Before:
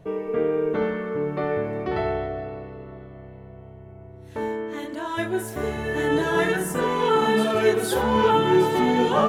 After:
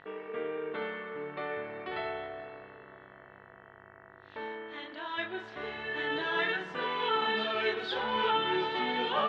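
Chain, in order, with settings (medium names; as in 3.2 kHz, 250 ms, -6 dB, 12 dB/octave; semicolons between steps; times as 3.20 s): mains buzz 50 Hz, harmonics 39, -46 dBFS -2 dB/octave; steep low-pass 3.8 kHz 36 dB/octave; tilt EQ +4.5 dB/octave; trim -8 dB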